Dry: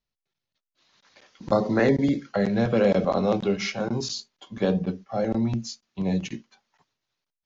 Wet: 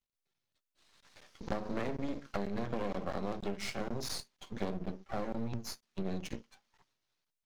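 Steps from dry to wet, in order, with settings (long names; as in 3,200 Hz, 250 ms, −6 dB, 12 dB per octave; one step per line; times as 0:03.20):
half-wave rectification
downward compressor 5 to 1, threshold −32 dBFS, peak gain reduction 14 dB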